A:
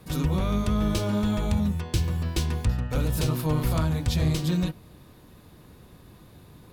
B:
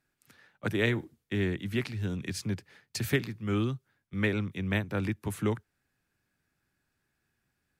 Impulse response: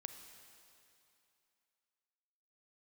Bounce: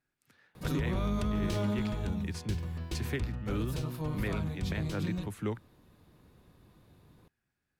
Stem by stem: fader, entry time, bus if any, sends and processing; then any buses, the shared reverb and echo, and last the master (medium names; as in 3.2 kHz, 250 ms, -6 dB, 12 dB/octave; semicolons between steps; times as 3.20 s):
1.54 s -1.5 dB -> 2.03 s -10 dB, 0.55 s, no send, none
-5.0 dB, 0.00 s, no send, none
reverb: none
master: treble shelf 5.2 kHz -5 dB; peak limiter -23 dBFS, peak gain reduction 8.5 dB